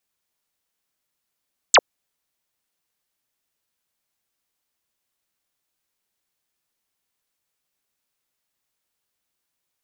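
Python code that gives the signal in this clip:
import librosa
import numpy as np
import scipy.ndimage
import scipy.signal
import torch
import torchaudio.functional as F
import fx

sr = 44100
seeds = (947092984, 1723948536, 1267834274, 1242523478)

y = fx.laser_zap(sr, level_db=-8.0, start_hz=8800.0, end_hz=390.0, length_s=0.05, wave='sine')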